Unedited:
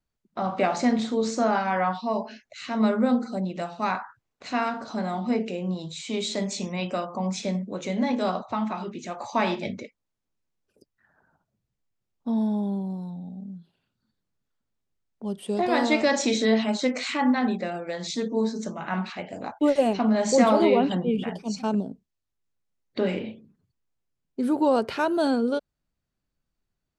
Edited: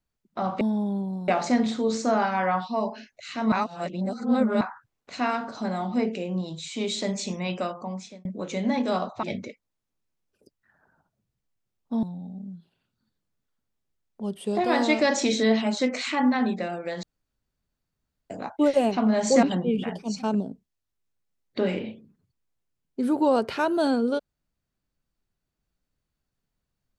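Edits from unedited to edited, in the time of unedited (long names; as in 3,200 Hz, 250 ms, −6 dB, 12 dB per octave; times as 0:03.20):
0:02.85–0:03.94: reverse
0:06.92–0:07.58: fade out linear
0:08.56–0:09.58: remove
0:12.38–0:13.05: move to 0:00.61
0:18.05–0:19.32: fill with room tone
0:20.45–0:20.83: remove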